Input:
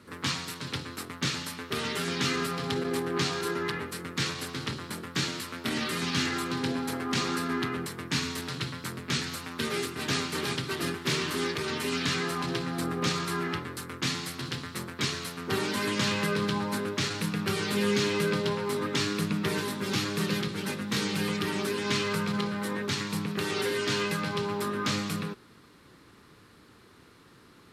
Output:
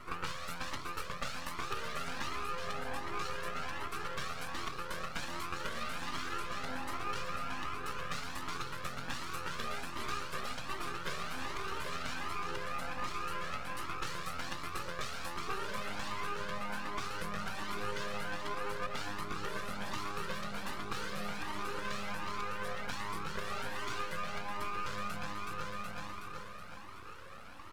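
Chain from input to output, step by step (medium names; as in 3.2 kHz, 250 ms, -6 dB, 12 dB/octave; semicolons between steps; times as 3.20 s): peaking EQ 1.2 kHz +14 dB 0.91 oct; feedback delay 372 ms, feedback 51%, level -7.5 dB; compression, threshold -35 dBFS, peak gain reduction 16.5 dB; peaking EQ 540 Hz +13 dB 0.27 oct; half-wave rectifier; Shepard-style flanger rising 1.3 Hz; trim +5.5 dB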